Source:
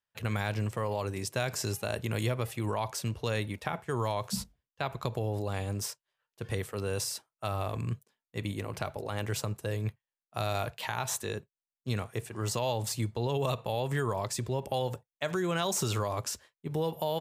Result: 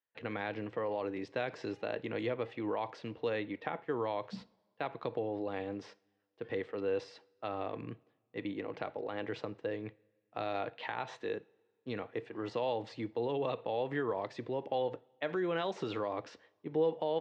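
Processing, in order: speaker cabinet 190–3700 Hz, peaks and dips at 300 Hz +10 dB, 480 Hz +8 dB, 780 Hz +4 dB, 1900 Hz +5 dB; two-slope reverb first 0.42 s, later 1.8 s, from -17 dB, DRR 18.5 dB; gain -6.5 dB

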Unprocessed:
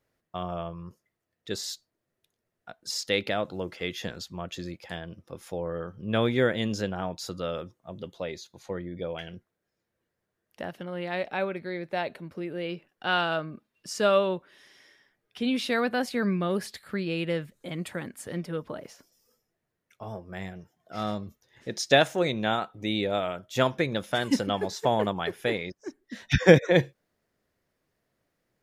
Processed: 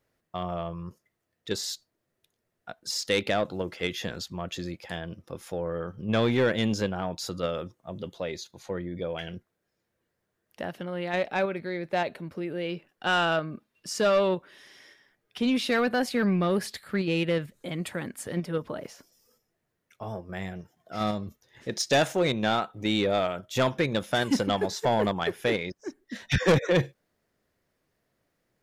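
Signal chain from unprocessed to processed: in parallel at -2 dB: level quantiser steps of 15 dB; on the sum: soft clip -16 dBFS, distortion -9 dB

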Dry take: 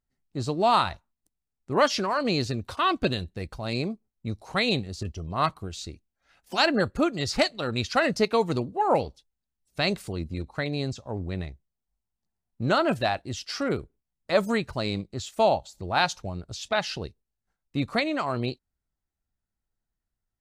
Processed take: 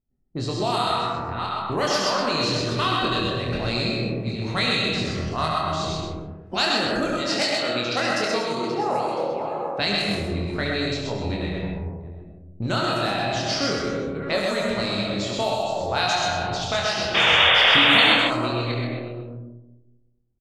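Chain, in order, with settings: reverse delay 0.367 s, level -13 dB; high shelf 10000 Hz +8 dB; reverb RT60 1.2 s, pre-delay 65 ms, DRR 0.5 dB; compressor 4:1, threshold -31 dBFS, peak gain reduction 14.5 dB; 7.15–9.8 HPF 190 Hz 12 dB/oct; 17.14–18.15 painted sound noise 430–3700 Hz -28 dBFS; low-pass opened by the level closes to 420 Hz, open at -26.5 dBFS; high shelf 2300 Hz +8.5 dB; doubler 25 ms -4 dB; loudspeakers at several distances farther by 24 m -7 dB, 44 m -4 dB; gain +4.5 dB

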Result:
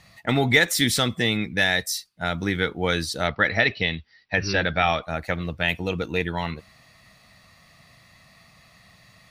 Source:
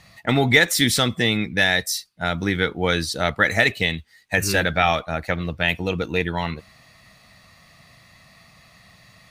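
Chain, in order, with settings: 3.27–5.03 brick-wall FIR low-pass 5900 Hz; gain -2.5 dB

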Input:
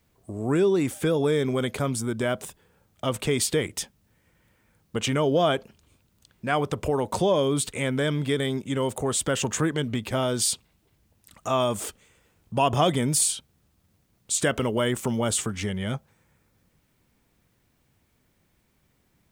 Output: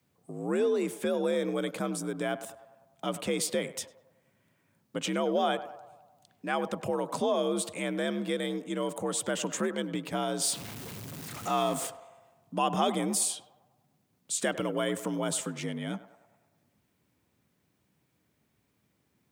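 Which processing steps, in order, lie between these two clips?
10.44–11.87 zero-crossing step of -30 dBFS; frequency shift +57 Hz; narrowing echo 0.1 s, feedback 62%, band-pass 810 Hz, level -12.5 dB; gain -6 dB

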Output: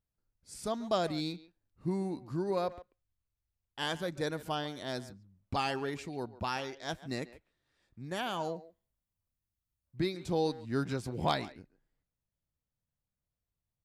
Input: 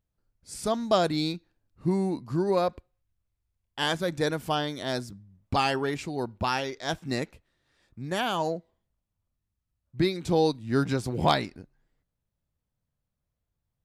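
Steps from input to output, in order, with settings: 8.56–9.99 high shelf 8600 Hz +10.5 dB; speakerphone echo 0.14 s, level -16 dB; gain -7.5 dB

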